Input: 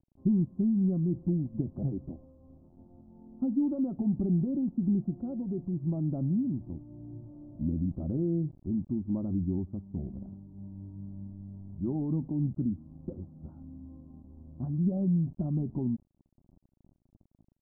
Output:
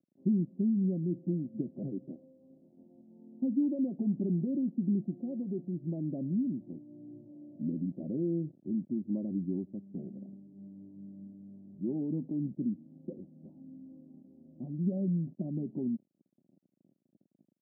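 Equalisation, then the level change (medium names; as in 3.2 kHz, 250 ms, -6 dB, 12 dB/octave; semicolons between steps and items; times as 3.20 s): high-pass 180 Hz 24 dB/octave; Chebyshev low-pass 560 Hz, order 3; 0.0 dB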